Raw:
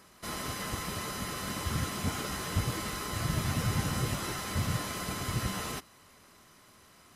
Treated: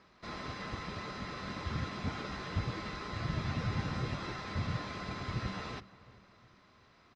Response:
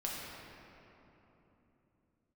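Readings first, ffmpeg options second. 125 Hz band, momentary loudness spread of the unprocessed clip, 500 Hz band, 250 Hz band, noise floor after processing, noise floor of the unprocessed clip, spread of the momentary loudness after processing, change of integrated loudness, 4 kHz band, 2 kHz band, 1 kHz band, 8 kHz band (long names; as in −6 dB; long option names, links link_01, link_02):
−4.0 dB, 5 LU, −4.0 dB, −4.0 dB, −64 dBFS, −59 dBFS, 7 LU, −5.0 dB, −7.0 dB, −4.0 dB, −4.0 dB, −19.0 dB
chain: -filter_complex "[0:a]lowpass=frequency=4600:width=0.5412,lowpass=frequency=4600:width=1.3066,bandreject=frequency=3000:width=18,asplit=2[link_01][link_02];[link_02]adelay=360,lowpass=frequency=2000:poles=1,volume=-19dB,asplit=2[link_03][link_04];[link_04]adelay=360,lowpass=frequency=2000:poles=1,volume=0.5,asplit=2[link_05][link_06];[link_06]adelay=360,lowpass=frequency=2000:poles=1,volume=0.5,asplit=2[link_07][link_08];[link_08]adelay=360,lowpass=frequency=2000:poles=1,volume=0.5[link_09];[link_01][link_03][link_05][link_07][link_09]amix=inputs=5:normalize=0,volume=-4dB"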